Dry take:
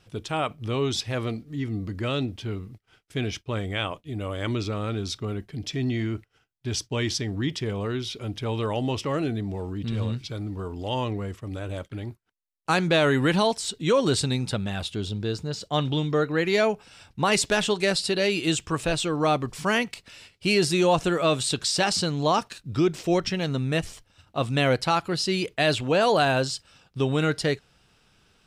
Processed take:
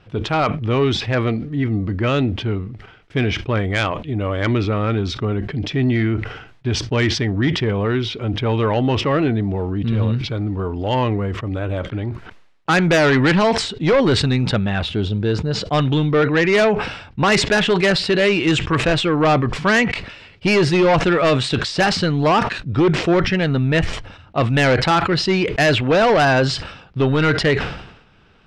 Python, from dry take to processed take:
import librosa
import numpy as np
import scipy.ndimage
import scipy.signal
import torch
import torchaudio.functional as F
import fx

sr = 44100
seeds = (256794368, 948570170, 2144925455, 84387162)

p1 = scipy.signal.sosfilt(scipy.signal.butter(2, 2600.0, 'lowpass', fs=sr, output='sos'), x)
p2 = fx.dynamic_eq(p1, sr, hz=1900.0, q=1.7, threshold_db=-43.0, ratio=4.0, max_db=5)
p3 = fx.fold_sine(p2, sr, drive_db=10, ceiling_db=-8.5)
p4 = p2 + F.gain(torch.from_numpy(p3), -7.5).numpy()
y = fx.sustainer(p4, sr, db_per_s=72.0)